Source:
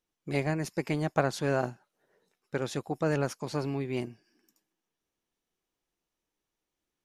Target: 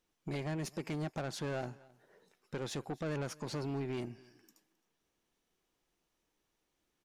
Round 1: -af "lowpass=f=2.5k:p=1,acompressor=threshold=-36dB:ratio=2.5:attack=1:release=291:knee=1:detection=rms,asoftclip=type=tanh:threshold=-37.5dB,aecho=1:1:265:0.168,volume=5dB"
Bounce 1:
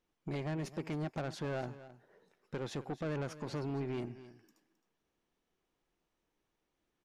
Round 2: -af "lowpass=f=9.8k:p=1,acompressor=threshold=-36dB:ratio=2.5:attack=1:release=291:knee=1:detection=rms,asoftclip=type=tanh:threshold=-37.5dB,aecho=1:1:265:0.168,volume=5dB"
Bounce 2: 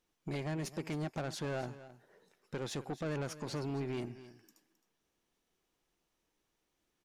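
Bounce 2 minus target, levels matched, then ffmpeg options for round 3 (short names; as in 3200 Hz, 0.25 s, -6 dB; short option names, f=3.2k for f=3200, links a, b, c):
echo-to-direct +8 dB
-af "lowpass=f=9.8k:p=1,acompressor=threshold=-36dB:ratio=2.5:attack=1:release=291:knee=1:detection=rms,asoftclip=type=tanh:threshold=-37.5dB,aecho=1:1:265:0.0668,volume=5dB"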